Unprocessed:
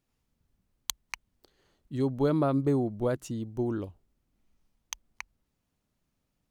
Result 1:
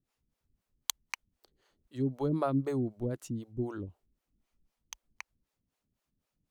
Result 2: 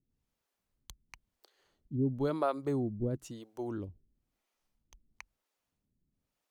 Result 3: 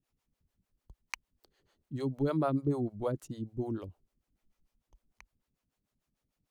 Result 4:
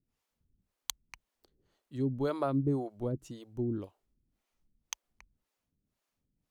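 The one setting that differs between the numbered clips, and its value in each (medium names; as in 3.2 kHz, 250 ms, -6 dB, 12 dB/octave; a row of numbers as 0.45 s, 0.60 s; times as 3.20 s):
harmonic tremolo, rate: 3.9 Hz, 1 Hz, 6.7 Hz, 1.9 Hz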